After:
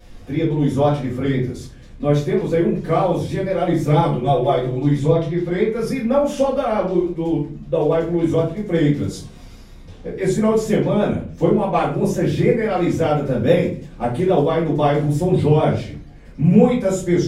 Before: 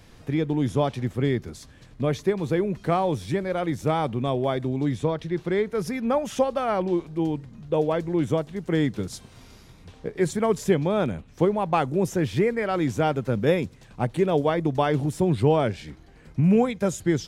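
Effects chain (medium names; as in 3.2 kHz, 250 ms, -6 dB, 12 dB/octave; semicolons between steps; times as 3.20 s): 0.72–1.28 s: peaking EQ 1.3 kHz +6.5 dB 0.39 oct; 3.60–5.21 s: comb 5.9 ms, depth 69%; vibrato 6.1 Hz 61 cents; simulated room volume 32 m³, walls mixed, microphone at 1.9 m; trim -7 dB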